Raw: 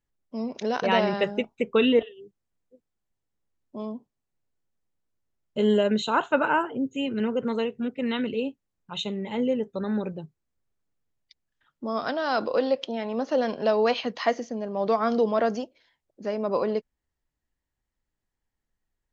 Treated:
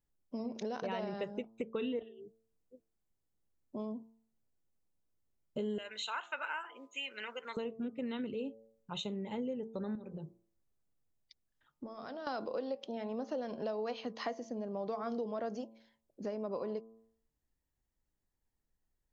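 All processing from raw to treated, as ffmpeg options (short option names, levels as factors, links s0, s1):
-filter_complex "[0:a]asettb=1/sr,asplit=3[s0][s1][s2];[s0]atrim=end=5.784[s3];[s1]atrim=start=5.78:end=7.57,asetpts=PTS-STARTPTS,afade=t=in:d=0.004:c=qsin,afade=t=out:st=1.786:d=0.004:c=qsin,highpass=1200,equalizer=f=2200:w=1.5:g=10.5[s4];[s2]atrim=start=7.566[s5];[s3][s4]acrossfade=d=0.004:c1=hsin:c2=qsin[s6];[s6][s5]acrossfade=d=0.004:c1=qsin:c2=hsin,asettb=1/sr,asplit=3[s7][s8][s9];[s7]atrim=end=9.954[s10];[s8]atrim=start=9.95:end=12.27,asetpts=PTS-STARTPTS,afade=t=in:d=0.004:c=qsin,afade=t=out:st=2.316:d=0.004:c=qsin,bandreject=f=60:t=h:w=6,bandreject=f=120:t=h:w=6,bandreject=f=180:t=h:w=6,bandreject=f=240:t=h:w=6,bandreject=f=300:t=h:w=6,bandreject=f=360:t=h:w=6,bandreject=f=420:t=h:w=6,bandreject=f=480:t=h:w=6,acompressor=threshold=0.0141:ratio=10:attack=3.2:release=140:knee=1:detection=peak[s11];[s9]atrim=start=12.266[s12];[s10][s11]acrossfade=d=0.004:c1=hsin:c2=qsin[s13];[s13][s12]acrossfade=d=0.004:c1=qsin:c2=hsin,equalizer=f=2300:t=o:w=2.5:g=-6,bandreject=f=112.1:t=h:w=4,bandreject=f=224.2:t=h:w=4,bandreject=f=336.3:t=h:w=4,bandreject=f=448.4:t=h:w=4,bandreject=f=560.5:t=h:w=4,bandreject=f=672.6:t=h:w=4,bandreject=f=784.7:t=h:w=4,bandreject=f=896.8:t=h:w=4,bandreject=f=1008.9:t=h:w=4,bandreject=f=1121:t=h:w=4,bandreject=f=1233.1:t=h:w=4,acompressor=threshold=0.0158:ratio=4,volume=0.891"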